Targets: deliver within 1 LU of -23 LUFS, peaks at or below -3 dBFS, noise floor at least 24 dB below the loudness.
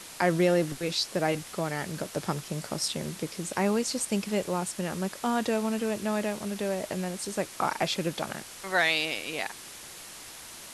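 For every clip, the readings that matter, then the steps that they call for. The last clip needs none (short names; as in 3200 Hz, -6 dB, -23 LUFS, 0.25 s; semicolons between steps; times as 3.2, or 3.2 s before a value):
noise floor -45 dBFS; noise floor target -54 dBFS; loudness -29.5 LUFS; peak -11.0 dBFS; loudness target -23.0 LUFS
-> noise print and reduce 9 dB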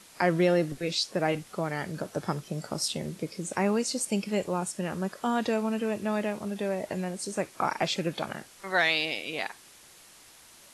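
noise floor -54 dBFS; loudness -29.5 LUFS; peak -11.5 dBFS; loudness target -23.0 LUFS
-> gain +6.5 dB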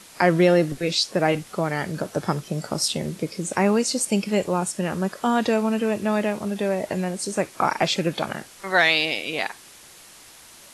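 loudness -23.0 LUFS; peak -5.0 dBFS; noise floor -47 dBFS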